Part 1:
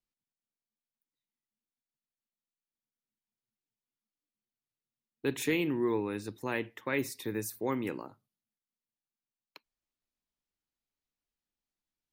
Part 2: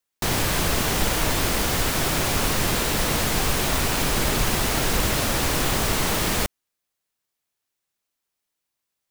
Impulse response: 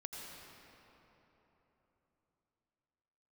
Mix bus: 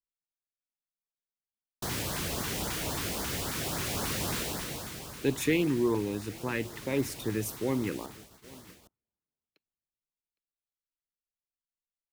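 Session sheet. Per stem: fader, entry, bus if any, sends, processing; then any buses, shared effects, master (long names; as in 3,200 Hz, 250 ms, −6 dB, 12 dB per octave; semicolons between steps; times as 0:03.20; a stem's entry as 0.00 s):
+2.5 dB, 0.00 s, no send, echo send −22.5 dB, low-shelf EQ 130 Hz +8.5 dB
−11.5 dB, 1.60 s, send −20.5 dB, echo send −14.5 dB, high-pass filter 66 Hz; automatic ducking −13 dB, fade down 0.85 s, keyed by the first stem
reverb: on, RT60 3.8 s, pre-delay 78 ms
echo: single-tap delay 811 ms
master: noise gate −47 dBFS, range −21 dB; speech leveller 2 s; auto-filter notch saw up 3.7 Hz 480–3,100 Hz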